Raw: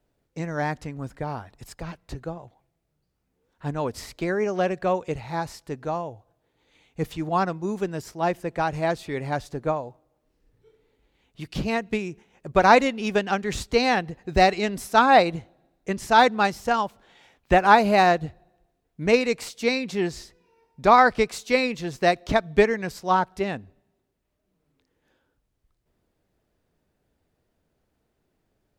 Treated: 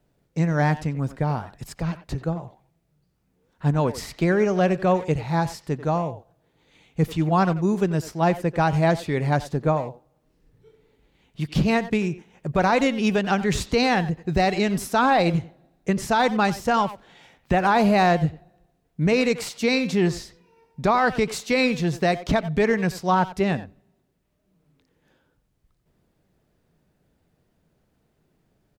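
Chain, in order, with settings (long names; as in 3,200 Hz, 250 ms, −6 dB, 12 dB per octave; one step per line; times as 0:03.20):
parametric band 160 Hz +7.5 dB 0.81 octaves
brickwall limiter −14.5 dBFS, peak gain reduction 12 dB
far-end echo of a speakerphone 90 ms, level −12 dB
level +3.5 dB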